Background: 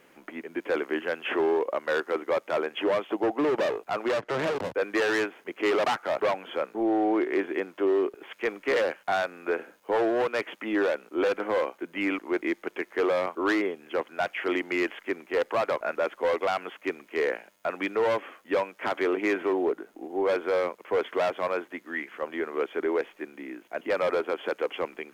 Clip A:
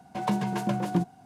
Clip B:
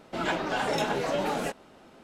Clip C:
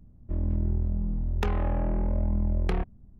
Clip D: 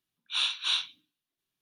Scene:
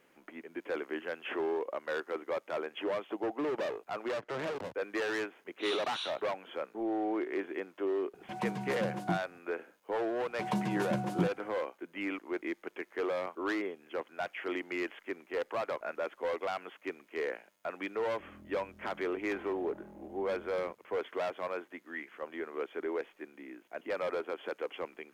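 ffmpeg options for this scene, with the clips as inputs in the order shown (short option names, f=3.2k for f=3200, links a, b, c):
-filter_complex "[1:a]asplit=2[a][b];[0:a]volume=-8.5dB[c];[3:a]highpass=210[d];[4:a]atrim=end=1.61,asetpts=PTS-STARTPTS,volume=-12dB,afade=t=in:d=0.004:c=hsin,afade=t=out:st=1.606:d=0.004:c=hsin,adelay=233289S[e];[a]atrim=end=1.25,asetpts=PTS-STARTPTS,volume=-9dB,afade=t=in:d=0.004:c=hsin,afade=t=out:st=1.246:d=0.004:c=hsin,adelay=8140[f];[b]atrim=end=1.25,asetpts=PTS-STARTPTS,volume=-5.5dB,afade=t=in:d=0.004:c=hsin,afade=t=out:st=1.246:d=0.004:c=hsin,adelay=10240[g];[d]atrim=end=3.19,asetpts=PTS-STARTPTS,volume=-16.5dB,afade=t=in:d=0.004:c=hsin,afade=t=out:st=3.186:d=0.004:c=hsin,adelay=17890[h];[c][e][f][g][h]amix=inputs=5:normalize=0"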